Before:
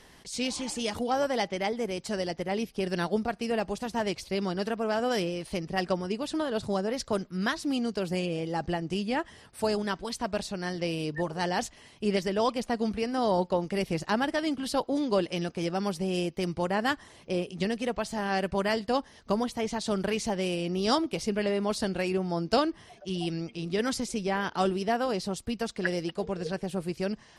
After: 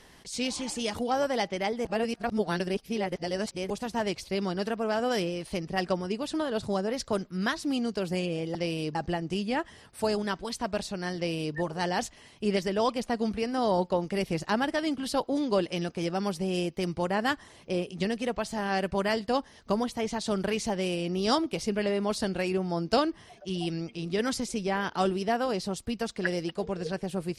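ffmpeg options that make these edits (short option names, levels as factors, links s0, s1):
-filter_complex "[0:a]asplit=5[s0][s1][s2][s3][s4];[s0]atrim=end=1.852[s5];[s1]atrim=start=1.848:end=3.702,asetpts=PTS-STARTPTS,areverse[s6];[s2]atrim=start=3.698:end=8.552[s7];[s3]atrim=start=10.758:end=11.162[s8];[s4]atrim=start=8.548[s9];[s5][s6]acrossfade=d=0.004:c1=hsin:c2=hsin[s10];[s10][s7]acrossfade=d=0.004:c1=hsin:c2=hsin[s11];[s11][s8]acrossfade=d=0.004:c1=hsin:c2=hsin[s12];[s12][s9]acrossfade=d=0.004:c1=hsin:c2=hsin"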